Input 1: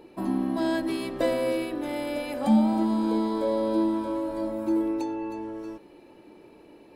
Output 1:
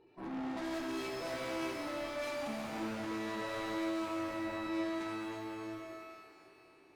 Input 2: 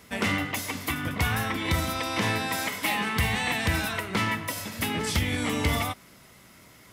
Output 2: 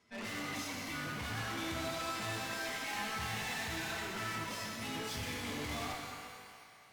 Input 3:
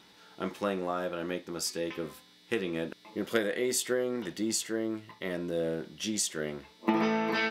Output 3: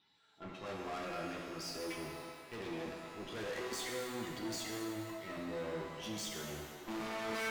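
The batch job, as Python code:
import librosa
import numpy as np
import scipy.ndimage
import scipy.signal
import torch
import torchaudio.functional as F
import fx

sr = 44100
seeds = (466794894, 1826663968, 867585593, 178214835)

y = fx.bin_expand(x, sr, power=1.5)
y = scipy.signal.sosfilt(scipy.signal.butter(2, 5200.0, 'lowpass', fs=sr, output='sos'), y)
y = fx.low_shelf(y, sr, hz=83.0, db=-8.0)
y = fx.notch(y, sr, hz=530.0, q=12.0)
y = fx.transient(y, sr, attack_db=-9, sustain_db=4)
y = fx.tube_stage(y, sr, drive_db=44.0, bias=0.5)
y = fx.echo_wet_bandpass(y, sr, ms=99, feedback_pct=84, hz=1300.0, wet_db=-11.5)
y = fx.rev_shimmer(y, sr, seeds[0], rt60_s=1.6, semitones=12, shimmer_db=-8, drr_db=0.0)
y = y * 10.0 ** (2.0 / 20.0)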